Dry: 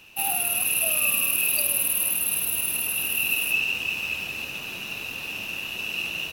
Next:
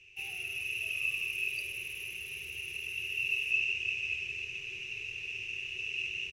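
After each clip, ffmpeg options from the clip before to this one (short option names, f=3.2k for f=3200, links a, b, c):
-af "firequalizer=gain_entry='entry(110,0);entry(260,-28);entry(380,1);entry(590,-23);entry(1500,-17);entry(2200,5);entry(3900,-13);entry(6000,-3);entry(13000,-30)':delay=0.05:min_phase=1,volume=-6dB"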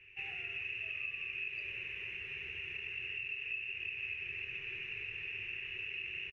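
-filter_complex "[0:a]acompressor=threshold=-36dB:ratio=6,lowpass=f=1.8k:t=q:w=3.8,asplit=2[a][b];[b]adelay=20,volume=-14dB[c];[a][c]amix=inputs=2:normalize=0"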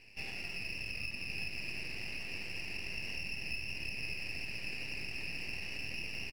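-af "aeval=exprs='max(val(0),0)':c=same,aecho=1:1:1124:0.422,volume=4dB"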